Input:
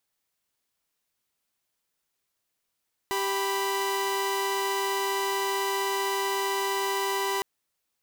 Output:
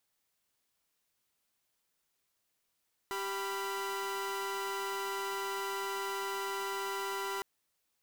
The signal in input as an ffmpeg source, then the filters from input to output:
-f lavfi -i "aevalsrc='0.0501*((2*mod(392*t,1)-1)+(2*mod(987.77*t,1)-1))':duration=4.31:sample_rate=44100"
-af "aeval=exprs='(tanh(56.2*val(0)+0.05)-tanh(0.05))/56.2':channel_layout=same"

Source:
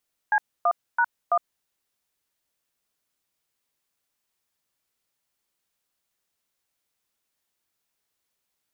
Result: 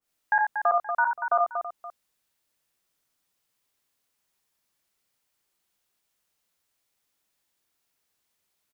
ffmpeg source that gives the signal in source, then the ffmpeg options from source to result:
-f lavfi -i "aevalsrc='0.1*clip(min(mod(t,0.332),0.061-mod(t,0.332))/0.002,0,1)*(eq(floor(t/0.332),0)*(sin(2*PI*852*mod(t,0.332))+sin(2*PI*1633*mod(t,0.332)))+eq(floor(t/0.332),1)*(sin(2*PI*697*mod(t,0.332))+sin(2*PI*1209*mod(t,0.332)))+eq(floor(t/0.332),2)*(sin(2*PI*941*mod(t,0.332))+sin(2*PI*1477*mod(t,0.332)))+eq(floor(t/0.332),3)*(sin(2*PI*697*mod(t,0.332))+sin(2*PI*1209*mod(t,0.332))))':duration=1.328:sample_rate=44100"
-filter_complex "[0:a]asplit=2[link_01][link_02];[link_02]aecho=0:1:67|87|236|329|524:0.562|0.473|0.447|0.2|0.126[link_03];[link_01][link_03]amix=inputs=2:normalize=0,adynamicequalizer=threshold=0.0141:dfrequency=1900:dqfactor=0.7:tfrequency=1900:tqfactor=0.7:attack=5:release=100:ratio=0.375:range=3.5:mode=cutabove:tftype=highshelf"

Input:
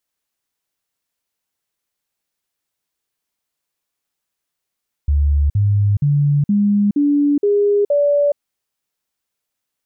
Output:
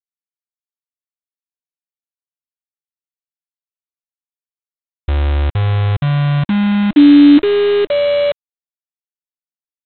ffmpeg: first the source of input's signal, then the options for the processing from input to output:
-f lavfi -i "aevalsrc='0.266*clip(min(mod(t,0.47),0.42-mod(t,0.47))/0.005,0,1)*sin(2*PI*72.2*pow(2,floor(t/0.47)/2)*mod(t,0.47))':duration=3.29:sample_rate=44100"
-af "equalizer=frequency=310:width_type=o:width=0.32:gain=13.5,aresample=8000,acrusher=bits=4:dc=4:mix=0:aa=0.000001,aresample=44100"

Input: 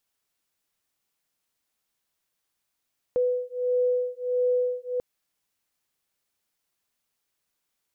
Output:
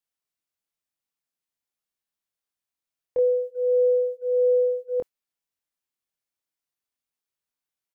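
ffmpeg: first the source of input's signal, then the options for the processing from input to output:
-f lavfi -i "aevalsrc='0.0531*(sin(2*PI*496*t)+sin(2*PI*497.5*t))':duration=1.84:sample_rate=44100"
-filter_complex "[0:a]agate=range=-12dB:threshold=-35dB:ratio=16:detection=peak,asplit=2[link_01][link_02];[link_02]adelay=24,volume=-4dB[link_03];[link_01][link_03]amix=inputs=2:normalize=0"

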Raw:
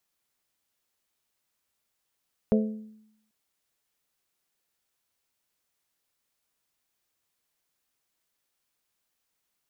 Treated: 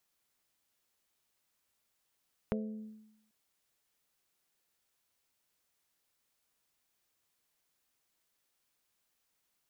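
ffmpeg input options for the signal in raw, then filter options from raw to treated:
-f lavfi -i "aevalsrc='0.126*pow(10,-3*t/0.8)*sin(2*PI*216*t)+0.0794*pow(10,-3*t/0.492)*sin(2*PI*432*t)+0.0501*pow(10,-3*t/0.433)*sin(2*PI*518.4*t)+0.0316*pow(10,-3*t/0.371)*sin(2*PI*648*t)':duration=0.79:sample_rate=44100"
-af "acompressor=threshold=-35dB:ratio=4"

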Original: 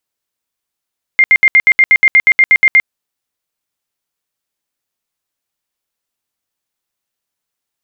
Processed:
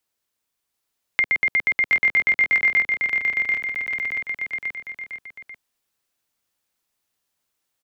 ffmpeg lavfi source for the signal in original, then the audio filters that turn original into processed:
-f lavfi -i "aevalsrc='0.668*sin(2*PI*2110*mod(t,0.12))*lt(mod(t,0.12),104/2110)':duration=1.68:sample_rate=44100"
-filter_complex "[0:a]acrossover=split=220|650[link_01][link_02][link_03];[link_01]acompressor=threshold=-45dB:ratio=4[link_04];[link_02]acompressor=threshold=-41dB:ratio=4[link_05];[link_03]acompressor=threshold=-21dB:ratio=4[link_06];[link_04][link_05][link_06]amix=inputs=3:normalize=0,aecho=1:1:740|1369|1904|2358|2744:0.631|0.398|0.251|0.158|0.1"

